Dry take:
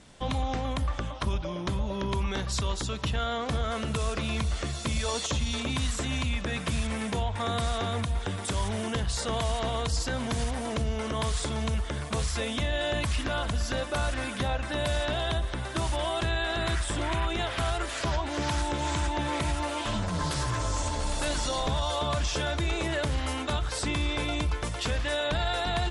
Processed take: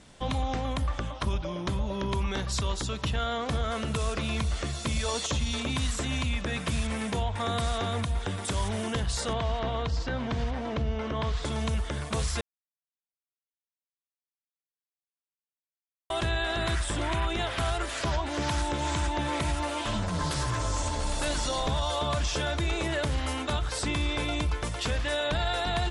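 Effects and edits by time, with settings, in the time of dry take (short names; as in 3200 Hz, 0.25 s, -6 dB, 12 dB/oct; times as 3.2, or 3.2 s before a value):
9.33–11.45 air absorption 180 m
12.41–16.1 mute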